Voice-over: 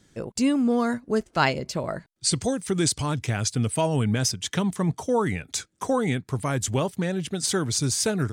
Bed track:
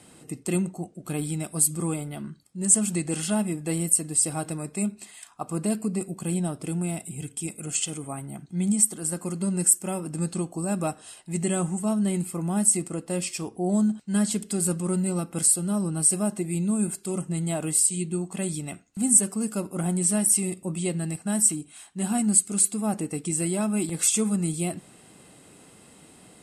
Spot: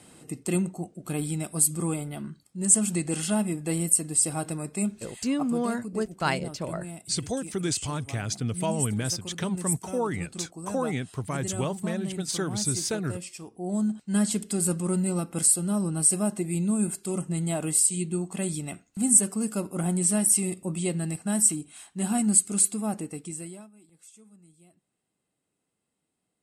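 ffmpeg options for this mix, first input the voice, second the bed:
-filter_complex "[0:a]adelay=4850,volume=-5dB[a];[1:a]volume=8.5dB,afade=t=out:st=5.34:d=0.24:silence=0.354813,afade=t=in:st=13.52:d=0.61:silence=0.354813,afade=t=out:st=22.61:d=1.09:silence=0.0334965[b];[a][b]amix=inputs=2:normalize=0"

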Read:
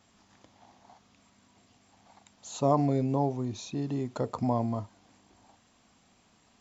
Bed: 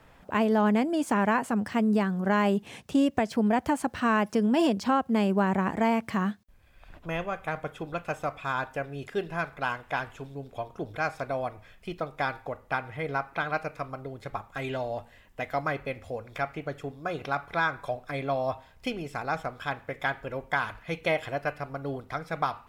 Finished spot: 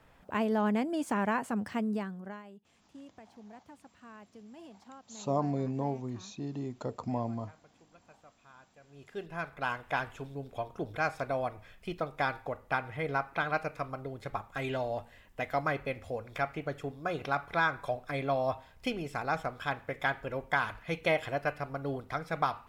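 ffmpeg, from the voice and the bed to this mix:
-filter_complex "[0:a]adelay=2650,volume=-5.5dB[a];[1:a]volume=20dB,afade=t=out:st=1.67:d=0.76:silence=0.0841395,afade=t=in:st=8.81:d=1.07:silence=0.0530884[b];[a][b]amix=inputs=2:normalize=0"

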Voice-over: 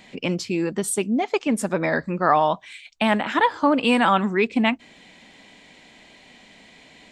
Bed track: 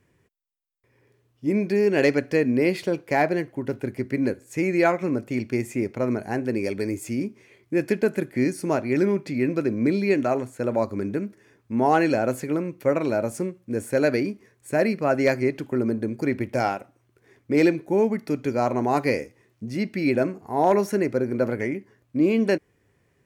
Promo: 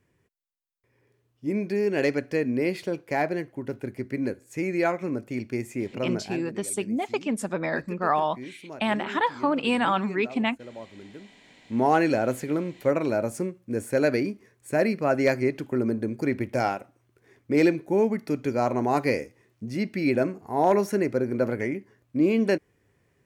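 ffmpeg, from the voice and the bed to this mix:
-filter_complex "[0:a]adelay=5800,volume=-5.5dB[a];[1:a]volume=11.5dB,afade=t=out:st=6.18:d=0.34:silence=0.223872,afade=t=in:st=11.28:d=0.51:silence=0.158489[b];[a][b]amix=inputs=2:normalize=0"

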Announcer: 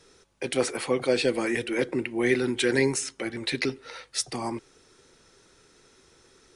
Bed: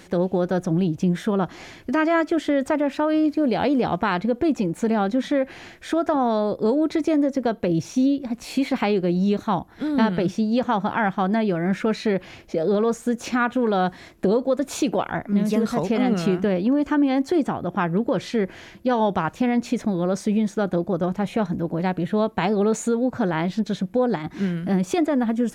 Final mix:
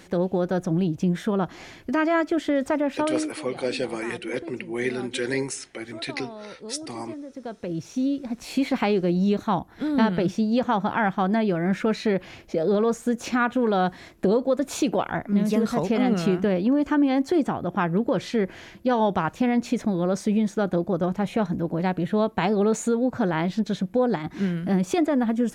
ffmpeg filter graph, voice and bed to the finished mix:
-filter_complex "[0:a]adelay=2550,volume=-3.5dB[a];[1:a]volume=15dB,afade=t=out:st=3:d=0.35:silence=0.158489,afade=t=in:st=7.27:d=1.36:silence=0.141254[b];[a][b]amix=inputs=2:normalize=0"

